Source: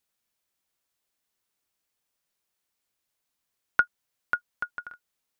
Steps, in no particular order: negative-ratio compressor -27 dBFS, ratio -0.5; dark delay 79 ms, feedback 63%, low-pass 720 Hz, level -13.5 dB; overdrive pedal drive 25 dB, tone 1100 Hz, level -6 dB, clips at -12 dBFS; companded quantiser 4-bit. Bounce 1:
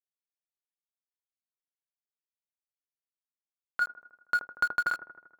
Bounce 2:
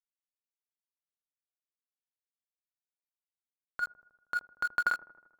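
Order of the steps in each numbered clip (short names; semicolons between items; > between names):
companded quantiser > negative-ratio compressor > dark delay > overdrive pedal; companded quantiser > overdrive pedal > negative-ratio compressor > dark delay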